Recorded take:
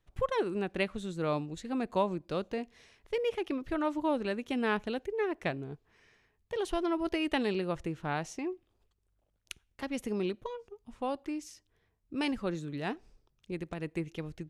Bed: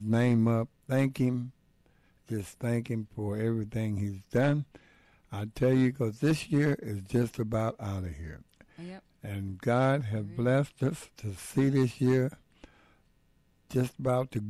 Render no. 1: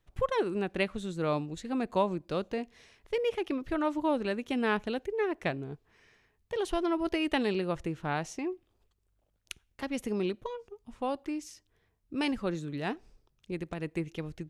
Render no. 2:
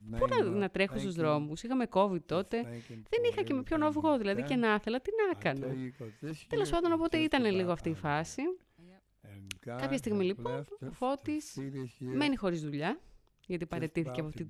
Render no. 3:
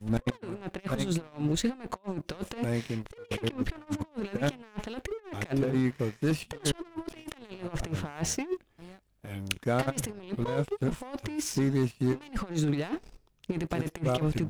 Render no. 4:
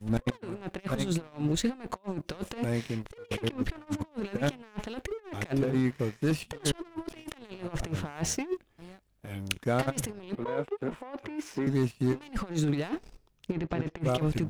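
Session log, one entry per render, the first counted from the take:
trim +1.5 dB
add bed -14.5 dB
compressor with a negative ratio -38 dBFS, ratio -0.5; waveshaping leveller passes 2
10.35–11.67 s: three-band isolator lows -13 dB, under 250 Hz, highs -15 dB, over 2.9 kHz; 13.52–14.01 s: distance through air 160 m

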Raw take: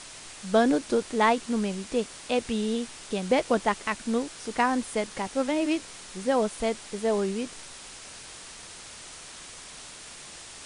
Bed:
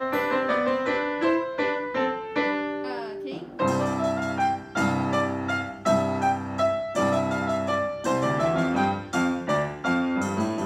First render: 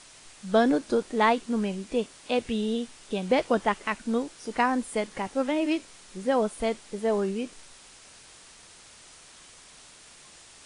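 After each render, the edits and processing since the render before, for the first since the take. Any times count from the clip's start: noise print and reduce 7 dB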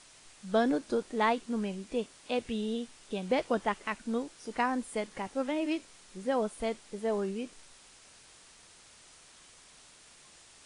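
trim -5.5 dB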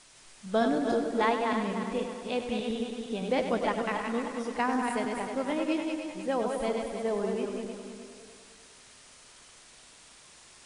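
backward echo that repeats 153 ms, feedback 60%, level -4.5 dB; tape echo 100 ms, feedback 69%, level -8 dB, low-pass 5.7 kHz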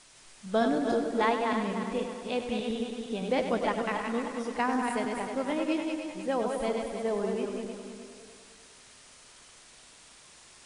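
no audible change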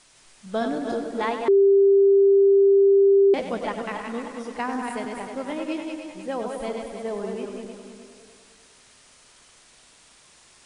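1.48–3.34 s: bleep 395 Hz -12.5 dBFS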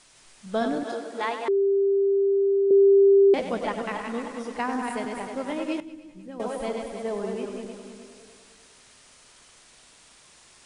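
0.83–2.71 s: high-pass 660 Hz 6 dB/octave; 5.80–6.40 s: FFT filter 160 Hz 0 dB, 770 Hz -18 dB, 1.2 kHz -14 dB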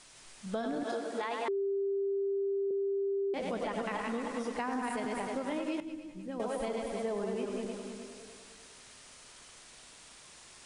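peak limiter -22 dBFS, peak gain reduction 9.5 dB; compression, threshold -31 dBFS, peak gain reduction 7 dB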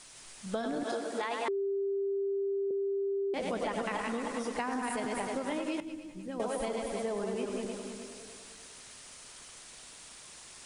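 treble shelf 7.7 kHz +6.5 dB; harmonic-percussive split percussive +3 dB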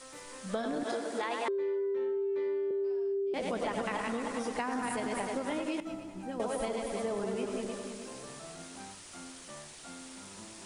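add bed -25 dB

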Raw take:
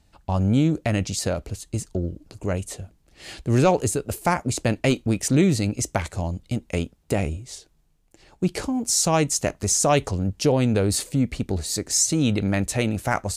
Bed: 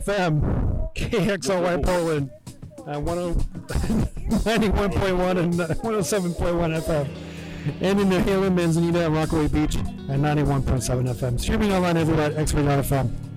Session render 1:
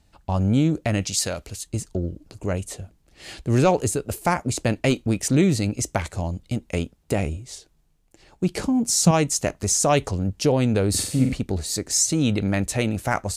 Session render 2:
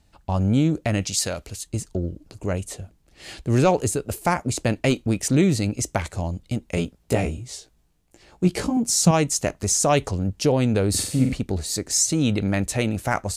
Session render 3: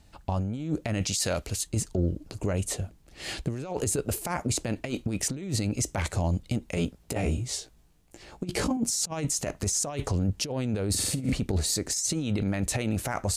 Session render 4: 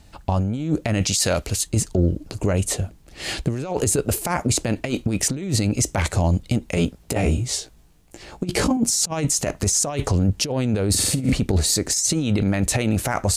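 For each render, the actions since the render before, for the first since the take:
1.01–1.67 s: tilt shelf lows -5.5 dB, about 1.3 kHz; 8.57–9.11 s: peaking EQ 180 Hz +11.5 dB; 10.90–11.33 s: flutter echo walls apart 7.8 m, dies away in 0.6 s
6.75–8.77 s: doubling 17 ms -2.5 dB
compressor with a negative ratio -24 dBFS, ratio -0.5; peak limiter -18 dBFS, peak gain reduction 9 dB
trim +7.5 dB

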